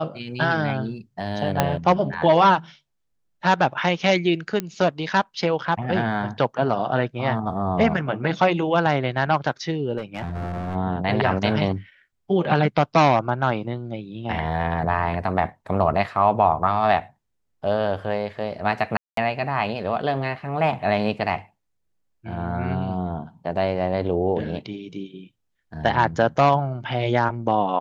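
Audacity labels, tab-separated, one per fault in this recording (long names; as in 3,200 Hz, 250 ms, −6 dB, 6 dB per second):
1.600000	1.600000	click −3 dBFS
4.600000	4.600000	click −12 dBFS
9.970000	10.750000	clipping −24.5 dBFS
18.970000	19.170000	drop-out 203 ms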